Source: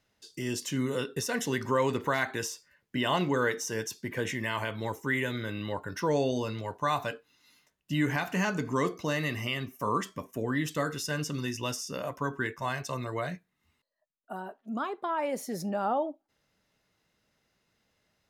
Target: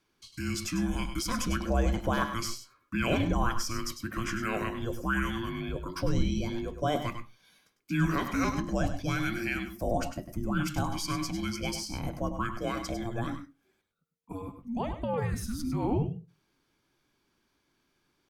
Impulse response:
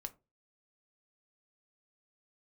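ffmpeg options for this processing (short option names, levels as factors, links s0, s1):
-filter_complex "[0:a]atempo=1,afreqshift=-460,asplit=2[s0][s1];[1:a]atrim=start_sample=2205,adelay=100[s2];[s1][s2]afir=irnorm=-1:irlink=0,volume=0.562[s3];[s0][s3]amix=inputs=2:normalize=0"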